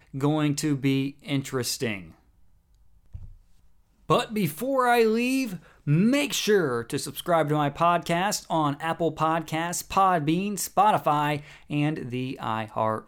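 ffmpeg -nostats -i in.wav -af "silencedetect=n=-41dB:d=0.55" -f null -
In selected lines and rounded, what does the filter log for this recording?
silence_start: 2.11
silence_end: 3.15 | silence_duration: 1.04
silence_start: 3.32
silence_end: 4.09 | silence_duration: 0.77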